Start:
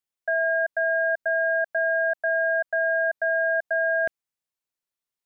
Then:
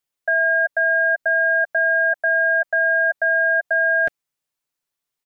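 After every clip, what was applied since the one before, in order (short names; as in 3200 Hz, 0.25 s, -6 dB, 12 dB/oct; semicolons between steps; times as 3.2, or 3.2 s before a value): comb 6.9 ms, depth 38%; gain +5.5 dB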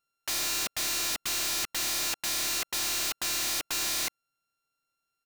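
sample sorter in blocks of 32 samples; wrapped overs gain 25 dB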